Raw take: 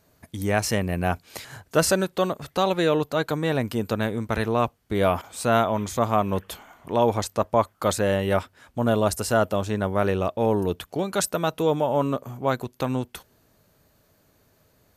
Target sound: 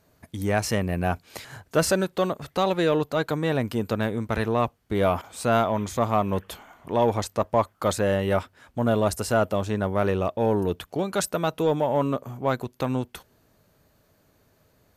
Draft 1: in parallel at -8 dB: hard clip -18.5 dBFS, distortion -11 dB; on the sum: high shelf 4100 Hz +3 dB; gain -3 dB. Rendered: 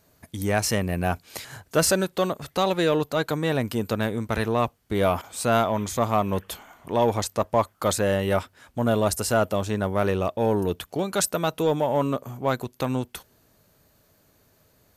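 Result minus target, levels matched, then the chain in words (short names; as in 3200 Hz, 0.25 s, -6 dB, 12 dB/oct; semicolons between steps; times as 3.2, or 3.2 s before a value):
8000 Hz band +4.5 dB
in parallel at -8 dB: hard clip -18.5 dBFS, distortion -11 dB; on the sum: high shelf 4100 Hz -3.5 dB; gain -3 dB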